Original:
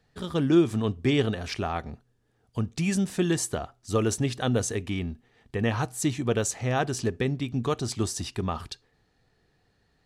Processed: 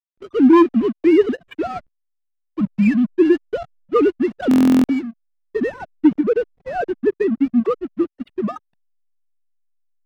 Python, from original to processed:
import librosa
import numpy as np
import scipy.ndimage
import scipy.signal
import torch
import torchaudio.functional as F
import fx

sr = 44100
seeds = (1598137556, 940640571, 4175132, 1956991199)

y = fx.sine_speech(x, sr)
y = fx.backlash(y, sr, play_db=-35.0)
y = fx.leveller(y, sr, passes=2)
y = fx.peak_eq(y, sr, hz=860.0, db=-5.5, octaves=1.4)
y = 10.0 ** (-10.5 / 20.0) * (np.abs((y / 10.0 ** (-10.5 / 20.0) + 3.0) % 4.0 - 2.0) - 1.0)
y = fx.lowpass(y, sr, hz=fx.steps((0.0, 1700.0), (5.07, 1000.0)), slope=6)
y = fx.buffer_glitch(y, sr, at_s=(4.49,), block=1024, repeats=14)
y = y * librosa.db_to_amplitude(6.0)